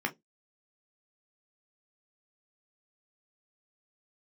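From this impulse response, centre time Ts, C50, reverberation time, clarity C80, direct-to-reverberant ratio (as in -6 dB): 8 ms, 22.0 dB, no single decay rate, 32.5 dB, 2.5 dB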